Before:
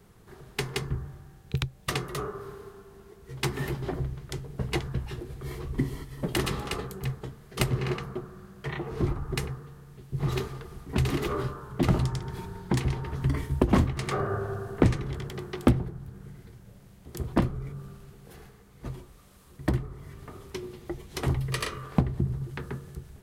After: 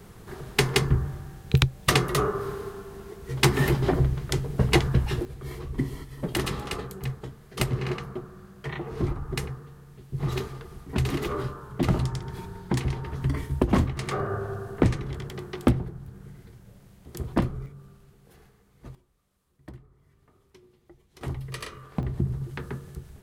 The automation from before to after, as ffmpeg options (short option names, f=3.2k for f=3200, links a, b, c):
-af "asetnsamples=n=441:p=0,asendcmd='5.25 volume volume 0dB;17.66 volume volume -6.5dB;18.95 volume volume -18dB;21.21 volume volume -6dB;22.03 volume volume 1dB',volume=9dB"